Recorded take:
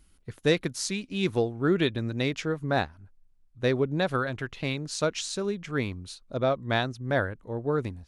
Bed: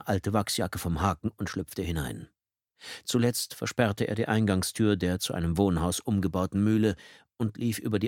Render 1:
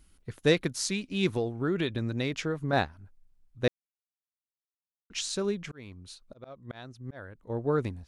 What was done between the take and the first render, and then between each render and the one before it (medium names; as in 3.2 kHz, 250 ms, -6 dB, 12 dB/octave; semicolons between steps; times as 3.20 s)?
1.33–2.73 s: compression 3:1, threshold -25 dBFS; 3.68–5.10 s: mute; 5.61–7.50 s: slow attack 691 ms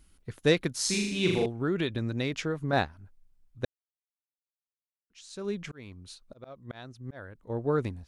0.75–1.46 s: flutter echo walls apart 6.7 m, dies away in 0.87 s; 3.65–5.55 s: fade in exponential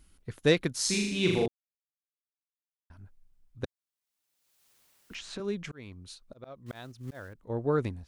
1.48–2.90 s: mute; 3.64–5.40 s: three bands compressed up and down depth 100%; 6.66–7.35 s: block-companded coder 5-bit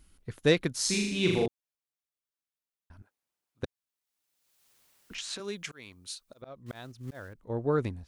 3.02–3.63 s: high-pass 460 Hz; 5.18–6.42 s: tilt EQ +3 dB/octave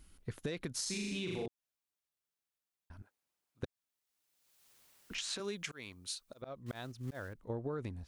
peak limiter -21.5 dBFS, peak gain reduction 11 dB; compression 10:1, threshold -35 dBFS, peak gain reduction 10 dB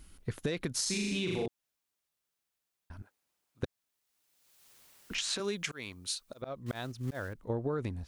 trim +5.5 dB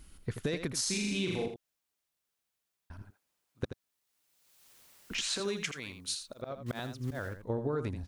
delay 82 ms -9.5 dB